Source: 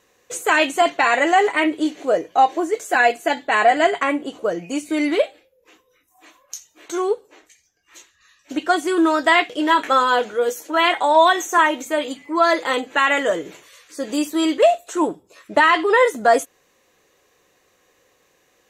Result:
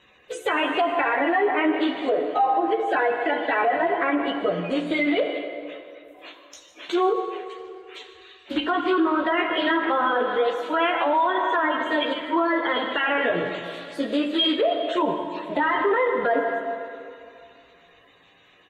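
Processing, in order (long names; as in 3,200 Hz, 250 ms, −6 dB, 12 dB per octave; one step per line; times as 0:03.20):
spectral magnitudes quantised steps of 30 dB
multi-voice chorus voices 2, 0.26 Hz, delay 14 ms, depth 3.8 ms
single-tap delay 152 ms −17 dB
treble cut that deepens with the level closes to 1,500 Hz, closed at −17.5 dBFS
in parallel at +1 dB: downward compressor, threshold −32 dBFS, peak gain reduction 19.5 dB
on the sum: high shelf with overshoot 4,600 Hz −10 dB, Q 3
convolution reverb RT60 2.5 s, pre-delay 23 ms, DRR 7.5 dB
brickwall limiter −13.5 dBFS, peak gain reduction 9.5 dB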